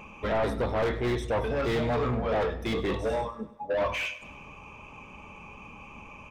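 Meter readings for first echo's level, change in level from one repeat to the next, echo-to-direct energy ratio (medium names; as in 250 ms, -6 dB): -17.5 dB, -5.5 dB, -16.0 dB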